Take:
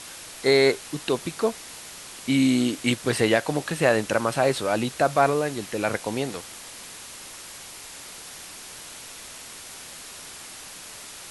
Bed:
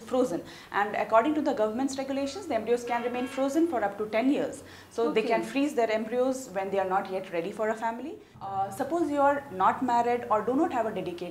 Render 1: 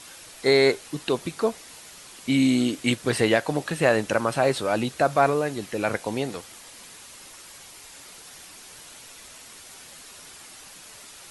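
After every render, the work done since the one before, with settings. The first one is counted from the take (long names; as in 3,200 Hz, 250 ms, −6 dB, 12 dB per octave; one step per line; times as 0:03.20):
broadband denoise 6 dB, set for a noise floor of −42 dBFS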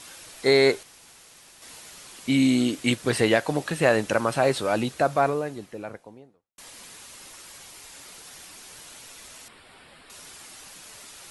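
0:00.83–0:01.62: fill with room tone
0:04.68–0:06.58: fade out and dull
0:09.48–0:10.10: moving average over 7 samples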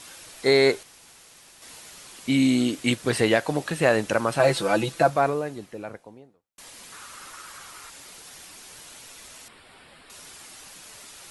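0:04.39–0:05.10: comb filter 6 ms, depth 85%
0:06.92–0:07.90: parametric band 1,300 Hz +13.5 dB 0.7 octaves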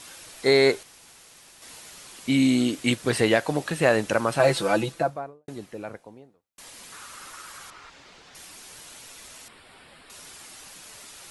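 0:04.68–0:05.48: fade out and dull
0:07.70–0:08.35: high-frequency loss of the air 150 metres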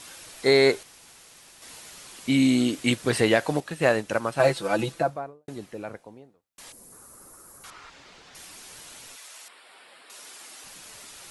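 0:03.60–0:04.79: expander for the loud parts, over −33 dBFS
0:06.72–0:07.64: drawn EQ curve 450 Hz 0 dB, 3,200 Hz −25 dB, 4,800 Hz −15 dB, 11,000 Hz +1 dB
0:09.15–0:10.63: high-pass filter 730 Hz → 250 Hz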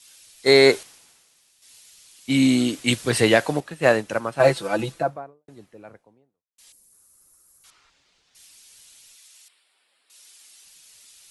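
multiband upward and downward expander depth 70%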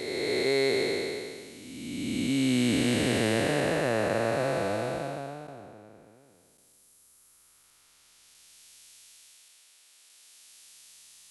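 spectrum smeared in time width 885 ms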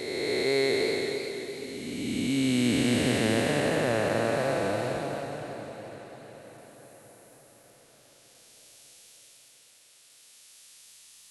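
feedback delay with all-pass diffusion 486 ms, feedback 60%, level −12 dB
feedback echo with a swinging delay time 273 ms, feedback 37%, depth 156 cents, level −13.5 dB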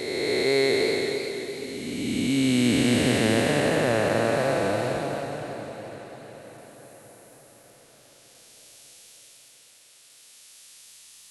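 level +3.5 dB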